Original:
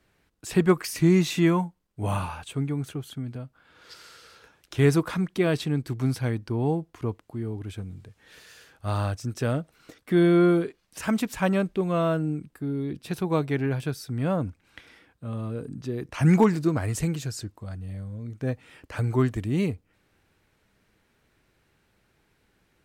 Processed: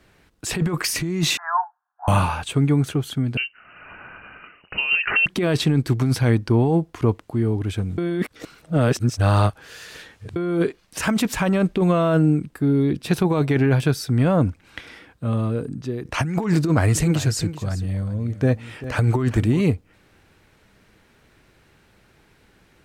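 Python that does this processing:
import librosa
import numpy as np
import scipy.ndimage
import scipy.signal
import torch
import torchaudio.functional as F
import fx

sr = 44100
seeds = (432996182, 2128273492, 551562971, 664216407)

y = fx.cheby1_bandpass(x, sr, low_hz=710.0, high_hz=1700.0, order=5, at=(1.37, 2.08))
y = fx.freq_invert(y, sr, carrier_hz=2900, at=(3.37, 5.26))
y = fx.echo_single(y, sr, ms=391, db=-14.5, at=(16.56, 19.61))
y = fx.edit(y, sr, fx.reverse_span(start_s=7.98, length_s=2.38),
    fx.fade_out_to(start_s=15.27, length_s=0.78, floor_db=-10.0), tone=tone)
y = fx.high_shelf(y, sr, hz=11000.0, db=-5.5)
y = fx.over_compress(y, sr, threshold_db=-26.0, ratio=-1.0)
y = y * 10.0 ** (8.0 / 20.0)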